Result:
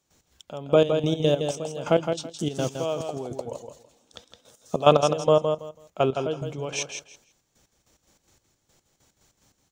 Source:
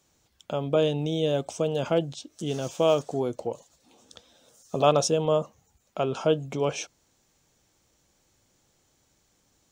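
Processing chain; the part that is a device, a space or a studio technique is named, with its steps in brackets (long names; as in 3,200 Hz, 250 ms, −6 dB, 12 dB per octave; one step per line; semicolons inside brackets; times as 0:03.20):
trance gate with a delay (gate pattern ".x.x...x..x" 145 BPM −12 dB; repeating echo 164 ms, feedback 20%, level −6.5 dB)
level +5 dB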